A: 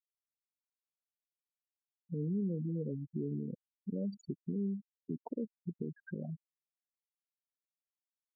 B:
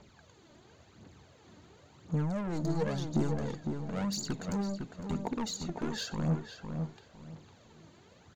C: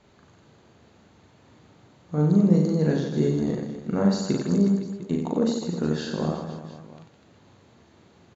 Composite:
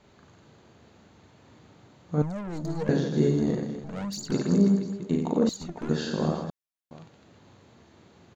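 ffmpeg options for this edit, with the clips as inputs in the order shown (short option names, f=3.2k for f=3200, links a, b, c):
-filter_complex "[1:a]asplit=3[a][b][c];[2:a]asplit=5[d][e][f][g][h];[d]atrim=end=2.222[i];[a]atrim=start=2.218:end=2.892[j];[e]atrim=start=2.888:end=3.842[k];[b]atrim=start=3.838:end=4.322[l];[f]atrim=start=4.318:end=5.492[m];[c]atrim=start=5.488:end=5.892[n];[g]atrim=start=5.888:end=6.502[o];[0:a]atrim=start=6.498:end=6.912[p];[h]atrim=start=6.908[q];[i][j]acrossfade=d=0.004:c1=hsin:c2=hsin[r];[r][k]acrossfade=d=0.004:c1=hsin:c2=hsin[s];[s][l]acrossfade=d=0.004:c1=hsin:c2=hsin[t];[t][m]acrossfade=d=0.004:c1=hsin:c2=hsin[u];[u][n]acrossfade=d=0.004:c1=hsin:c2=hsin[v];[v][o]acrossfade=d=0.004:c1=hsin:c2=hsin[w];[w][p]acrossfade=d=0.004:c1=hsin:c2=hsin[x];[x][q]acrossfade=d=0.004:c1=hsin:c2=hsin"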